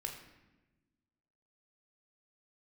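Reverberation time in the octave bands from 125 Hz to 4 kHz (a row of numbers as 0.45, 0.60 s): 1.7, 1.7, 1.2, 1.0, 1.0, 0.80 s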